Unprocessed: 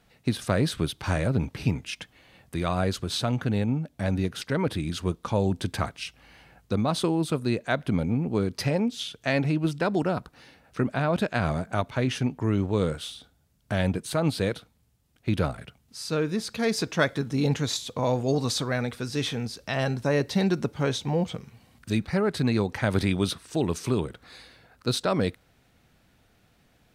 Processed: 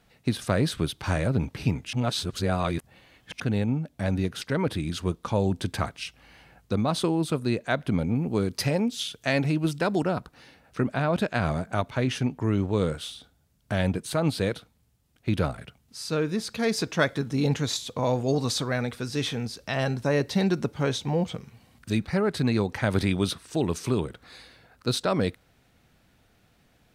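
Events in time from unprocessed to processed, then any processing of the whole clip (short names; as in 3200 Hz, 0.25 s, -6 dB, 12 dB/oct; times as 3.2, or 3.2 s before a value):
1.93–3.4 reverse
8.15–10.03 high shelf 5600 Hz +7 dB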